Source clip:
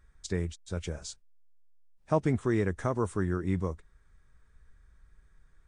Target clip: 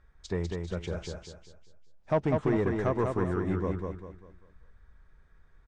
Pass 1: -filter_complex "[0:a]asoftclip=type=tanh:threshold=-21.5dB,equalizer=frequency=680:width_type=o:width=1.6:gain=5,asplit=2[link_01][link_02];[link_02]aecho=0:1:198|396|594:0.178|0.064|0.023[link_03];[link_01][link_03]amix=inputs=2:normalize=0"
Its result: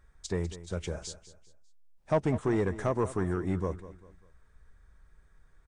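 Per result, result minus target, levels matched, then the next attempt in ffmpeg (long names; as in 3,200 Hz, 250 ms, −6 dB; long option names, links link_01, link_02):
echo-to-direct −11 dB; 4,000 Hz band +2.0 dB
-filter_complex "[0:a]asoftclip=type=tanh:threshold=-21.5dB,equalizer=frequency=680:width_type=o:width=1.6:gain=5,asplit=2[link_01][link_02];[link_02]aecho=0:1:198|396|594|792|990:0.631|0.227|0.0818|0.0294|0.0106[link_03];[link_01][link_03]amix=inputs=2:normalize=0"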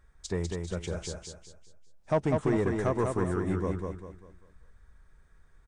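4,000 Hz band +2.5 dB
-filter_complex "[0:a]asoftclip=type=tanh:threshold=-21.5dB,lowpass=4400,equalizer=frequency=680:width_type=o:width=1.6:gain=5,asplit=2[link_01][link_02];[link_02]aecho=0:1:198|396|594|792|990:0.631|0.227|0.0818|0.0294|0.0106[link_03];[link_01][link_03]amix=inputs=2:normalize=0"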